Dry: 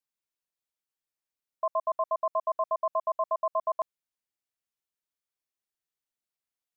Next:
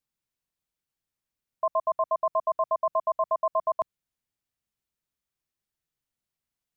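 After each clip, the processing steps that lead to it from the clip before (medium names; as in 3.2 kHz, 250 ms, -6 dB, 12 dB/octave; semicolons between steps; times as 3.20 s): tone controls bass +11 dB, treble -1 dB; trim +2.5 dB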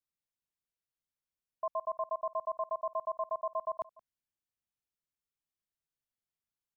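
delay 174 ms -22.5 dB; trim -9 dB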